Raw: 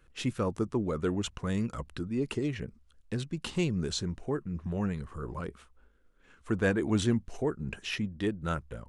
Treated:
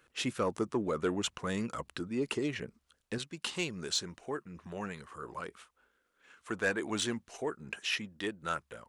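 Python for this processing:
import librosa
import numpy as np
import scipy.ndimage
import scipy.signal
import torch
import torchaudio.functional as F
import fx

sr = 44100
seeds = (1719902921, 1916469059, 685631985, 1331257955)

y = fx.highpass(x, sr, hz=fx.steps((0.0, 450.0), (3.18, 1000.0)), slope=6)
y = 10.0 ** (-22.0 / 20.0) * np.tanh(y / 10.0 ** (-22.0 / 20.0))
y = y * librosa.db_to_amplitude(3.5)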